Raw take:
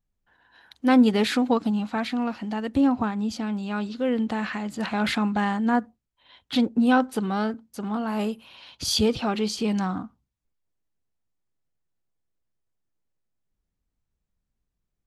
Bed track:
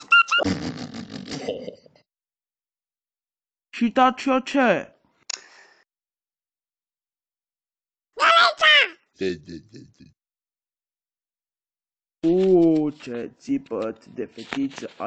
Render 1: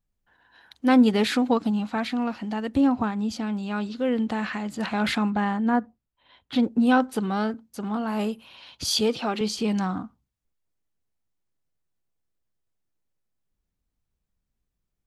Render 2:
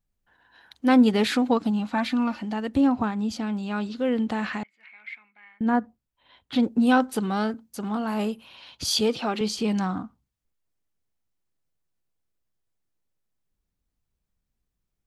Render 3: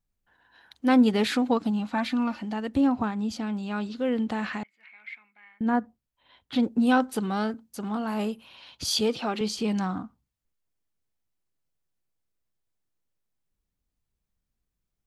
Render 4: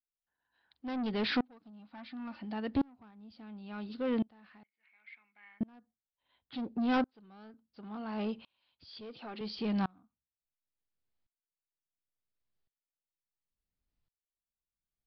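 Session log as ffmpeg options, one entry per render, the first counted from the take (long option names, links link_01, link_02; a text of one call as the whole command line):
ffmpeg -i in.wav -filter_complex "[0:a]asettb=1/sr,asplit=3[link_01][link_02][link_03];[link_01]atrim=end=5.304[link_04];[link_02]atrim=start=5.3:end=6.63,asetpts=PTS-STARTPTS,afade=type=in:duration=0.004:curve=qsin,afade=type=out:start_time=1.326:duration=0.004:curve=qsin,highshelf=frequency=3400:gain=-9.5[link_05];[link_03]atrim=start=6.626[link_06];[link_04][link_05]acrossfade=duration=0.004:curve1=hsin:curve2=qsin[link_07];[link_07][link_06]acrossfade=duration=0.004:curve1=qsin:curve2=hsin,asettb=1/sr,asplit=3[link_08][link_09][link_10];[link_08]atrim=end=8.864[link_11];[link_09]atrim=start=8.86:end=9.41,asetpts=PTS-STARTPTS,afade=type=in:duration=0.004:curve=qsin,afade=type=out:start_time=0.546:duration=0.004:curve=qsin,highpass=230[link_12];[link_10]atrim=start=9.406[link_13];[link_11][link_12]acrossfade=duration=0.004:curve1=hsin:curve2=qsin[link_14];[link_14][link_13]acrossfade=duration=0.004:curve1=qsin:curve2=hsin" out.wav
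ffmpeg -i in.wav -filter_complex "[0:a]asettb=1/sr,asplit=3[link_01][link_02][link_03];[link_01]atrim=end=1.934[link_04];[link_02]atrim=start=1.93:end=2.42,asetpts=PTS-STARTPTS,afade=type=in:duration=0.004:curve=qsin,afade=type=out:start_time=0.486:duration=0.004:curve=qsin,aecho=1:1:3.4:0.65,atrim=end_sample=21609[link_05];[link_03]atrim=start=2.416[link_06];[link_04][link_05]acrossfade=duration=0.004:curve1=hsin:curve2=qsin[link_07];[link_07][link_06]acrossfade=duration=0.004:curve1=qsin:curve2=hsin,asettb=1/sr,asplit=3[link_08][link_09][link_10];[link_08]atrim=end=4.634[link_11];[link_09]atrim=start=4.63:end=5.61,asetpts=PTS-STARTPTS,afade=type=in:duration=0.004:curve=qsin,afade=type=out:start_time=0.976:duration=0.004:curve=qsin,bandpass=frequency=2200:width_type=q:width=20[link_12];[link_10]atrim=start=5.606[link_13];[link_11][link_12]acrossfade=duration=0.004:curve1=hsin:curve2=qsin[link_14];[link_14][link_13]acrossfade=duration=0.004:curve1=qsin:curve2=hsin,asettb=1/sr,asplit=3[link_15][link_16][link_17];[link_15]atrim=end=6.604[link_18];[link_16]atrim=start=6.6:end=8.14,asetpts=PTS-STARTPTS,afade=type=in:duration=0.004:curve=qsin,afade=type=out:start_time=1.536:duration=0.004:curve=qsin,highshelf=frequency=4700:gain=5[link_19];[link_17]atrim=start=8.136[link_20];[link_18][link_19]acrossfade=duration=0.004:curve1=hsin:curve2=qsin[link_21];[link_21][link_20]acrossfade=duration=0.004:curve1=qsin:curve2=hsin" out.wav
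ffmpeg -i in.wav -af "volume=-2dB" out.wav
ffmpeg -i in.wav -af "aresample=11025,asoftclip=type=tanh:threshold=-23dB,aresample=44100,aeval=exprs='val(0)*pow(10,-32*if(lt(mod(-0.71*n/s,1),2*abs(-0.71)/1000),1-mod(-0.71*n/s,1)/(2*abs(-0.71)/1000),(mod(-0.71*n/s,1)-2*abs(-0.71)/1000)/(1-2*abs(-0.71)/1000))/20)':channel_layout=same" out.wav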